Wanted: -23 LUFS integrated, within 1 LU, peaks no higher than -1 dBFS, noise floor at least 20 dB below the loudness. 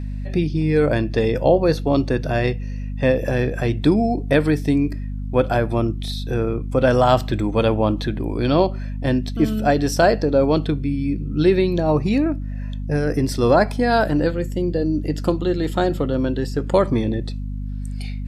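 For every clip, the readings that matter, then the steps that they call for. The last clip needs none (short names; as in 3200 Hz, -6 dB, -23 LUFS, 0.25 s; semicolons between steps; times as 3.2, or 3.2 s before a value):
hum 50 Hz; harmonics up to 250 Hz; hum level -25 dBFS; loudness -20.0 LUFS; peak -2.5 dBFS; loudness target -23.0 LUFS
-> de-hum 50 Hz, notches 5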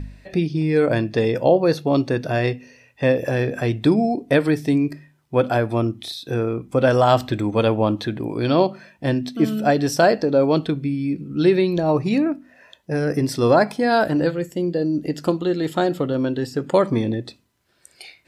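hum none; loudness -20.5 LUFS; peak -3.0 dBFS; loudness target -23.0 LUFS
-> gain -2.5 dB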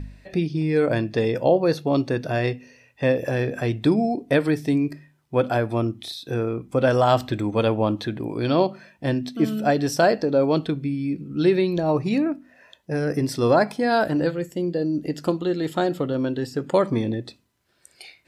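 loudness -23.0 LUFS; peak -5.5 dBFS; noise floor -62 dBFS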